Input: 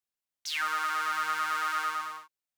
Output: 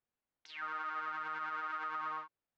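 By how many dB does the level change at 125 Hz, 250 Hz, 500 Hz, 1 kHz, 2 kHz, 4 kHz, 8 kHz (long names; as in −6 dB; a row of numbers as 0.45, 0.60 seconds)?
can't be measured, −3.5 dB, −5.0 dB, −8.0 dB, −10.0 dB, −17.5 dB, below −25 dB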